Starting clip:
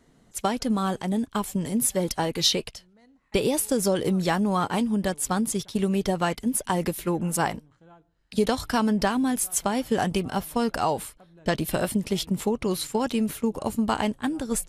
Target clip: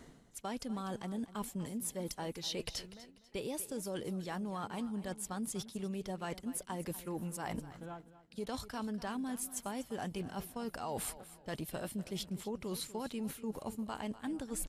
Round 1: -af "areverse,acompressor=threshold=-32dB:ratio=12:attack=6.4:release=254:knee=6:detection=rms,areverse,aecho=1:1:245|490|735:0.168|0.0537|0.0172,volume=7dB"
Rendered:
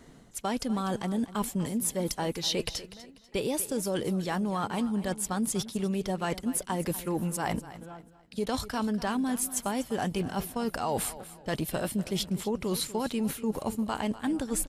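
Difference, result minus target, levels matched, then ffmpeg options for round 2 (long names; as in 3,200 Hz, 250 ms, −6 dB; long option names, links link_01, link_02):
downward compressor: peak gain reduction −9.5 dB
-af "areverse,acompressor=threshold=-42.5dB:ratio=12:attack=6.4:release=254:knee=6:detection=rms,areverse,aecho=1:1:245|490|735:0.168|0.0537|0.0172,volume=7dB"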